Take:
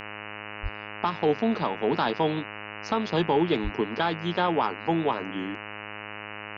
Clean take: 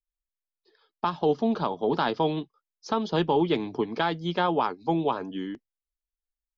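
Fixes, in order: de-hum 104.8 Hz, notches 28; 0.62–0.74 s: high-pass 140 Hz 24 dB/octave; 3.63–3.75 s: high-pass 140 Hz 24 dB/octave

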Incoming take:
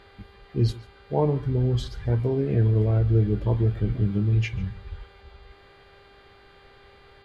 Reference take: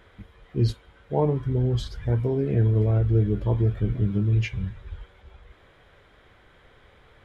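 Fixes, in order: de-hum 397.8 Hz, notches 12; inverse comb 143 ms -21 dB

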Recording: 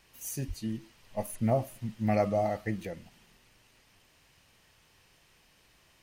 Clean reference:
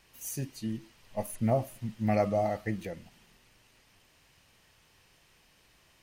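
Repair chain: 0.47–0.59 s: high-pass 140 Hz 24 dB/octave

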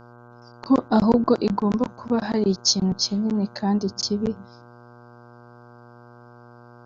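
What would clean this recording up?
de-hum 120.1 Hz, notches 13

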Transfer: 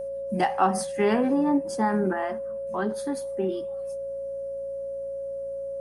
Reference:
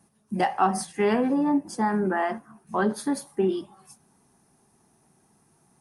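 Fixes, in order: de-hum 57.8 Hz, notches 4; band-stop 550 Hz, Q 30; gain correction +4.5 dB, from 2.13 s

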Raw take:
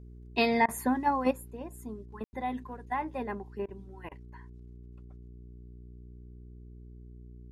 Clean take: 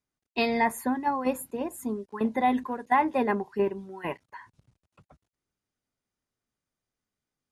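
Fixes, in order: de-hum 60.3 Hz, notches 7; room tone fill 2.24–2.33 s; interpolate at 0.66/3.66/4.09 s, 23 ms; trim 0 dB, from 1.31 s +10 dB

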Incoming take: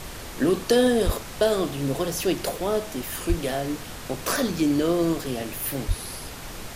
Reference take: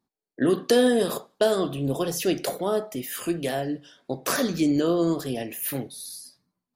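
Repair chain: 1.05–1.17 s: high-pass 140 Hz 24 dB/octave; 3.28–3.40 s: high-pass 140 Hz 24 dB/octave; 5.87–5.99 s: high-pass 140 Hz 24 dB/octave; noise print and reduce 30 dB

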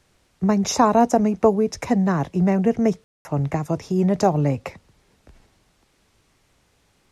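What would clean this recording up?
room tone fill 3.04–3.25 s

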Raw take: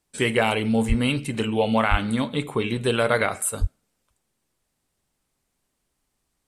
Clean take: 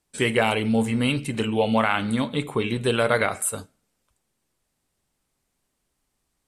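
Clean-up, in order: 0.88–1.00 s: high-pass 140 Hz 24 dB/octave; 1.90–2.02 s: high-pass 140 Hz 24 dB/octave; 3.60–3.72 s: high-pass 140 Hz 24 dB/octave

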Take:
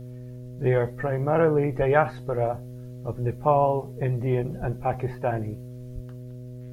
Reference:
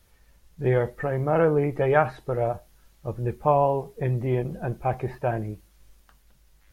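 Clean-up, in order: de-hum 124.3 Hz, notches 5; de-plosive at 1.78/4.60/5.94 s

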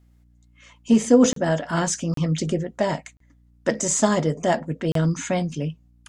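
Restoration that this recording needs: de-hum 59.4 Hz, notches 5; interpolate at 1.33/2.14/3.17/4.92 s, 33 ms

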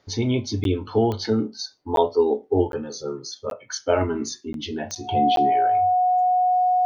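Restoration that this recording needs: de-click; band-stop 730 Hz, Q 30; interpolate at 0.64/1.96/2.72/3.50/4.53/5.36 s, 12 ms

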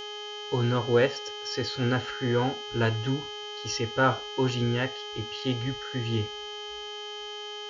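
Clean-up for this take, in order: de-hum 417.4 Hz, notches 16; band-stop 3.1 kHz, Q 30

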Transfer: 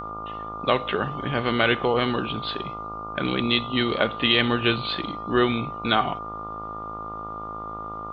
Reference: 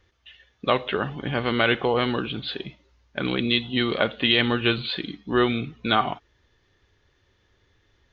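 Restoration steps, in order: de-hum 53.8 Hz, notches 26; band-stop 1.2 kHz, Q 30

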